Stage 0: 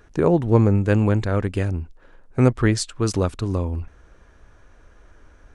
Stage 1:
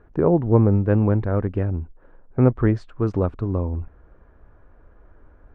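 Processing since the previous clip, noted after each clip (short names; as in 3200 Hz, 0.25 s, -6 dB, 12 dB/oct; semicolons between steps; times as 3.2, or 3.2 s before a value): LPF 1200 Hz 12 dB/oct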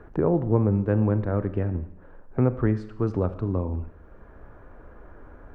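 Schroeder reverb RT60 0.69 s, combs from 29 ms, DRR 12 dB; three-band squash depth 40%; gain -4 dB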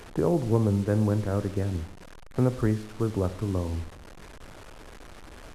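delta modulation 64 kbps, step -37.5 dBFS; gain -2 dB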